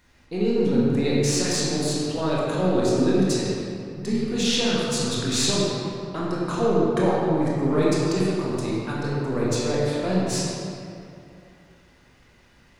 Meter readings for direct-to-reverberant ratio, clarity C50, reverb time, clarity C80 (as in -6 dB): -7.0 dB, -3.5 dB, 2.7 s, -1.5 dB